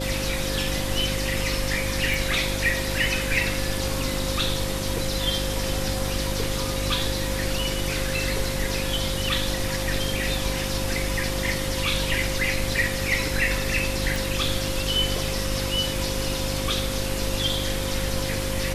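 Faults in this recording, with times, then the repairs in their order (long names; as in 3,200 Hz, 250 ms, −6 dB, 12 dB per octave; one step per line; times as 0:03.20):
mains hum 50 Hz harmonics 7 −30 dBFS
whistle 530 Hz −32 dBFS
0:02.14: click
0:14.16: click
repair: click removal
notch filter 530 Hz, Q 30
hum removal 50 Hz, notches 7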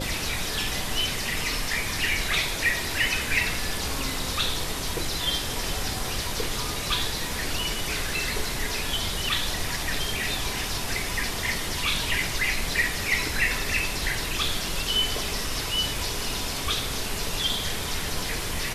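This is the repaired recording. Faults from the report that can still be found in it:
none of them is left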